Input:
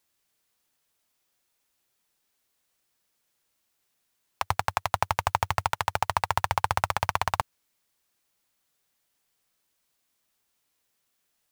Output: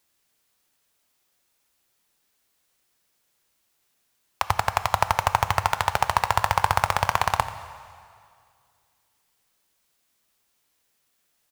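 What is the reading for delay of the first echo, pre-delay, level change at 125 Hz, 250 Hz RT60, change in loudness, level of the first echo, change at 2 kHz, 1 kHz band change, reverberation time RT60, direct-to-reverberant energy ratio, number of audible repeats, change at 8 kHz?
87 ms, 6 ms, +4.0 dB, 2.2 s, +4.0 dB, -16.0 dB, +4.5 dB, +4.5 dB, 2.2 s, 10.0 dB, 1, +4.5 dB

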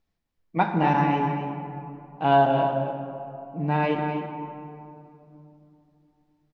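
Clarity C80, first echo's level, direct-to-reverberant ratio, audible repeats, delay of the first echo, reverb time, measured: 4.0 dB, -8.5 dB, 2.5 dB, 1, 0.26 s, 2.9 s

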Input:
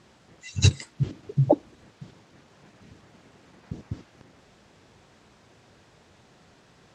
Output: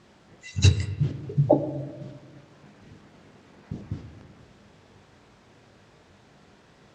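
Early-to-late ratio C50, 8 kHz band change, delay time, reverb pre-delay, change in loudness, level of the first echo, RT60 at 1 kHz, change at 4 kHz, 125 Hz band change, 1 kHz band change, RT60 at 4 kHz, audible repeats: 11.5 dB, -2.5 dB, none, 20 ms, +0.5 dB, none, 1.1 s, -1.0 dB, +1.5 dB, +1.0 dB, 0.80 s, none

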